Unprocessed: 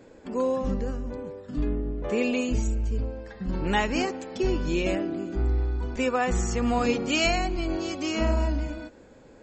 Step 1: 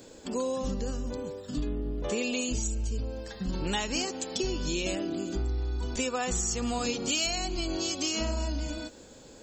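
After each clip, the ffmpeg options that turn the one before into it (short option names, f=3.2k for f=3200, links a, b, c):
-af "aexciter=amount=3.5:drive=7:freq=3k,acompressor=threshold=-28dB:ratio=4"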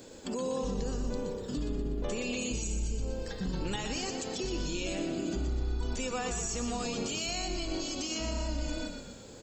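-filter_complex "[0:a]alimiter=level_in=2.5dB:limit=-24dB:level=0:latency=1:release=43,volume=-2.5dB,asplit=7[a][b][c][d][e][f][g];[b]adelay=122,afreqshift=-33,volume=-7dB[h];[c]adelay=244,afreqshift=-66,volume=-12.5dB[i];[d]adelay=366,afreqshift=-99,volume=-18dB[j];[e]adelay=488,afreqshift=-132,volume=-23.5dB[k];[f]adelay=610,afreqshift=-165,volume=-29.1dB[l];[g]adelay=732,afreqshift=-198,volume=-34.6dB[m];[a][h][i][j][k][l][m]amix=inputs=7:normalize=0"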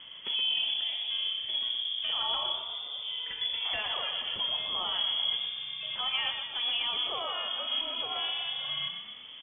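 -filter_complex "[0:a]highpass=170,asplit=2[a][b];[b]adelay=37,volume=-13.5dB[c];[a][c]amix=inputs=2:normalize=0,lowpass=f=3.1k:t=q:w=0.5098,lowpass=f=3.1k:t=q:w=0.6013,lowpass=f=3.1k:t=q:w=0.9,lowpass=f=3.1k:t=q:w=2.563,afreqshift=-3600,volume=4dB"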